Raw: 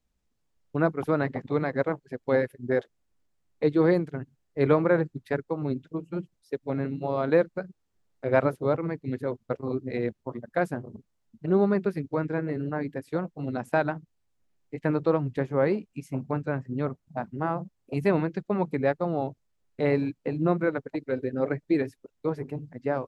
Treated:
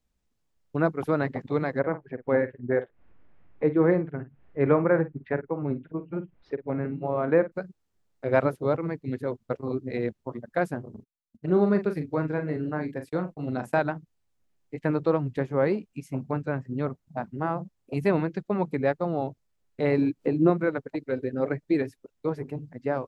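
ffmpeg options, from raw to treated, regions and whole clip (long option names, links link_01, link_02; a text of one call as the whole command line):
ffmpeg -i in.wav -filter_complex "[0:a]asettb=1/sr,asplit=3[link_01][link_02][link_03];[link_01]atrim=end=1.794[link_04];[link_02]atrim=start=1.79:end=7.52,asetpts=PTS-STARTPTS,afade=type=in:duration=0.004:curve=qsin,afade=type=out:start_time=5.726:duration=0.004:curve=qsin,lowpass=frequency=2400:width=0.5412,lowpass=frequency=2400:width=1.3066,acompressor=mode=upward:threshold=-39dB:ratio=2.5:attack=3.2:release=140:knee=2.83:detection=peak,asplit=2[link_05][link_06];[link_06]adelay=49,volume=-13dB[link_07];[link_05][link_07]amix=inputs=2:normalize=0,atrim=end_sample=252693[link_08];[link_03]atrim=start=7.516[link_09];[link_04][link_08]acrossfade=duration=0.004:curve1=hsin:curve2=qsin[link_10];[link_10][link_09]acrossfade=duration=0.004:curve1=qsin:curve2=hsin,asettb=1/sr,asplit=3[link_11][link_12][link_13];[link_11]atrim=end=10.944[link_14];[link_12]atrim=start=10.94:end=13.79,asetpts=PTS-STARTPTS,afade=type=in:duration=0.004:curve=qsin,afade=type=out:start_time=2.846:duration=0.004:curve=qsin,asplit=2[link_15][link_16];[link_16]adelay=39,volume=-8.5dB[link_17];[link_15][link_17]amix=inputs=2:normalize=0,atrim=end_sample=125685,agate=range=-27dB:threshold=-52dB:ratio=16:release=100:detection=peak[link_18];[link_13]atrim=start=13.786[link_19];[link_14][link_18]acrossfade=duration=0.004:curve1=hsin:curve2=qsin[link_20];[link_20][link_19]acrossfade=duration=0.004:curve1=qsin:curve2=hsin,asettb=1/sr,asplit=3[link_21][link_22][link_23];[link_21]atrim=end=19.984[link_24];[link_22]atrim=start=19.98:end=20.5,asetpts=PTS-STARTPTS,afade=type=in:duration=0.004:curve=qsin,afade=type=out:start_time=0.516:duration=0.004:curve=qsin,equalizer=frequency=340:width=1.5:gain=7.5,acompressor=mode=upward:threshold=-37dB:ratio=2.5:attack=3.2:release=140:knee=2.83:detection=peak[link_25];[link_23]atrim=start=20.496[link_26];[link_24][link_25]acrossfade=duration=0.004:curve1=hsin:curve2=qsin[link_27];[link_27][link_26]acrossfade=duration=0.004:curve1=qsin:curve2=hsin" out.wav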